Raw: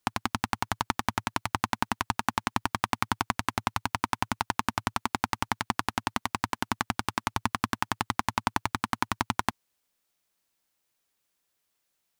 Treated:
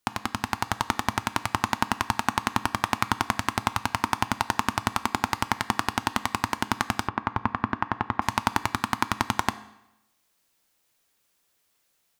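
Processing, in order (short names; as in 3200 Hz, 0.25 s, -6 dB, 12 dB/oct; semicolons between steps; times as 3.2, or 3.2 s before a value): reverb RT60 0.85 s, pre-delay 4 ms, DRR 12.5 dB; AGC gain up to 7 dB; 7.08–8.22 LPF 1700 Hz 12 dB/oct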